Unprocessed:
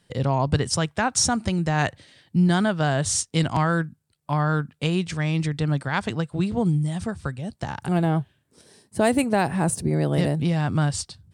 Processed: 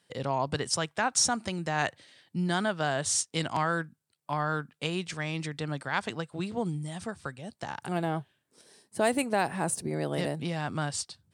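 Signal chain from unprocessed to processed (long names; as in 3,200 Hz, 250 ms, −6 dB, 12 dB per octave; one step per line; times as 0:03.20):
high-pass filter 400 Hz 6 dB per octave
level −3.5 dB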